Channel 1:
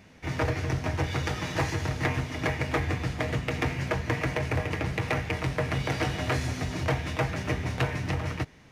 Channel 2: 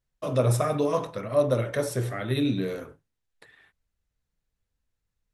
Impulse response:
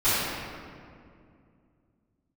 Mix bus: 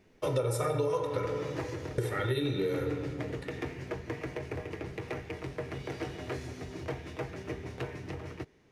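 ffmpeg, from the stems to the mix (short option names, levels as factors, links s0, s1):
-filter_complex "[0:a]equalizer=f=390:t=o:w=0.67:g=12,volume=0.237[s0];[1:a]aecho=1:1:2.2:0.96,volume=0.944,asplit=3[s1][s2][s3];[s1]atrim=end=1.26,asetpts=PTS-STARTPTS,afade=t=out:st=1.256:d=0.004:c=hsin[s4];[s2]atrim=start=1.26:end=1.98,asetpts=PTS-STARTPTS,volume=0[s5];[s3]atrim=start=1.98,asetpts=PTS-STARTPTS,afade=t=in:d=0.004:c=hsin[s6];[s4][s5][s6]concat=n=3:v=0:a=1,asplit=3[s7][s8][s9];[s8]volume=0.0708[s10];[s9]apad=whole_len=384371[s11];[s0][s11]sidechaincompress=threshold=0.0501:ratio=8:attack=16:release=412[s12];[2:a]atrim=start_sample=2205[s13];[s10][s13]afir=irnorm=-1:irlink=0[s14];[s12][s7][s14]amix=inputs=3:normalize=0,acompressor=threshold=0.0447:ratio=6"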